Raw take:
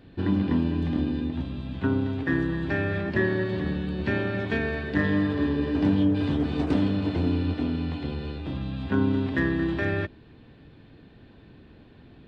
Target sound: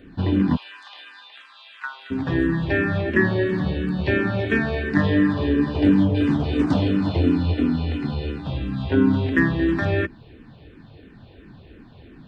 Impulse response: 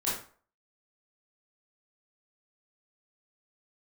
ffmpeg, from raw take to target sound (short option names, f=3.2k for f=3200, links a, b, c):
-filter_complex "[0:a]asplit=3[a][b][c];[a]afade=t=out:st=0.55:d=0.02[d];[b]highpass=f=1.1k:w=0.5412,highpass=f=1.1k:w=1.3066,afade=t=in:st=0.55:d=0.02,afade=t=out:st=2.1:d=0.02[e];[c]afade=t=in:st=2.1:d=0.02[f];[d][e][f]amix=inputs=3:normalize=0,asplit=2[g][h];[h]afreqshift=-2.9[i];[g][i]amix=inputs=2:normalize=1,volume=8dB"